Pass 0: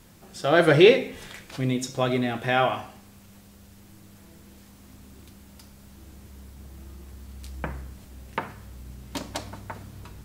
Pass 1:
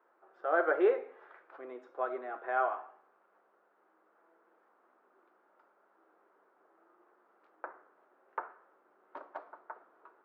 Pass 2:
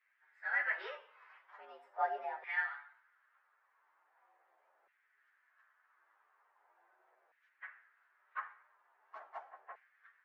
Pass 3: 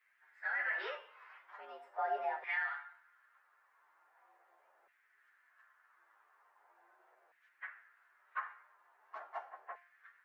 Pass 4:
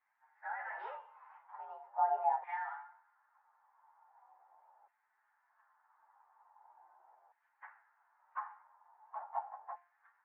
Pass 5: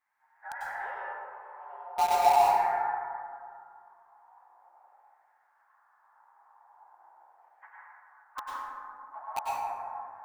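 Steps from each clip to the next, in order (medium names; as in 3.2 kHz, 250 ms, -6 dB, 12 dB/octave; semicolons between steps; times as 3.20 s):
Chebyshev band-pass 360–1400 Hz, order 3; tilt EQ +4 dB/octave; trim -6 dB
frequency axis rescaled in octaves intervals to 113%; LFO high-pass saw down 0.41 Hz 610–2100 Hz; trim -3 dB
peak limiter -31 dBFS, peak gain reduction 9 dB; feedback comb 350 Hz, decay 0.37 s, harmonics all, mix 60%; trim +10.5 dB
band-pass filter 860 Hz, Q 8.2; trim +12 dB
in parallel at -4 dB: bit crusher 5-bit; on the sum: plate-style reverb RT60 2.3 s, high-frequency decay 0.3×, pre-delay 85 ms, DRR -5.5 dB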